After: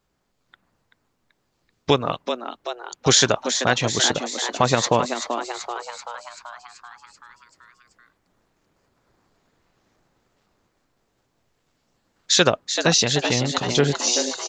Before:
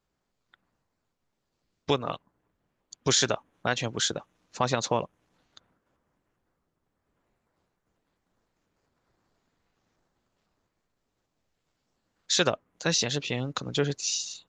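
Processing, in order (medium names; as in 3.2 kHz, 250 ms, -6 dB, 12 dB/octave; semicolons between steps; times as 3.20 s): frequency-shifting echo 384 ms, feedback 61%, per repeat +120 Hz, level -8 dB; trim +7.5 dB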